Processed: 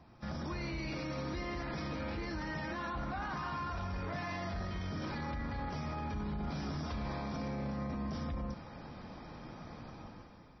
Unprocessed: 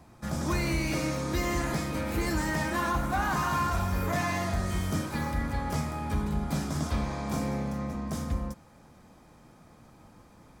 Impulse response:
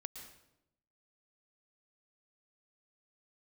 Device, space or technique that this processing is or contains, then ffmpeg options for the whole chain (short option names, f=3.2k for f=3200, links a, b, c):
low-bitrate web radio: -af "dynaudnorm=f=190:g=7:m=12dB,alimiter=level_in=2.5dB:limit=-24dB:level=0:latency=1:release=36,volume=-2.5dB,volume=-4.5dB" -ar 22050 -c:a libmp3lame -b:a 24k